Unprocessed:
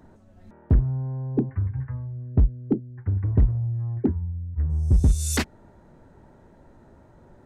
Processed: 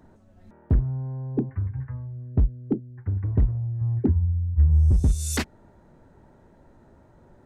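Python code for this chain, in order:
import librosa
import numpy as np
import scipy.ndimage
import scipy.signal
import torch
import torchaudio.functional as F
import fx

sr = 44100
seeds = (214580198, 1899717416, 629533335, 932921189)

y = fx.peak_eq(x, sr, hz=76.0, db=9.0, octaves=1.8, at=(3.81, 4.91))
y = y * librosa.db_to_amplitude(-2.0)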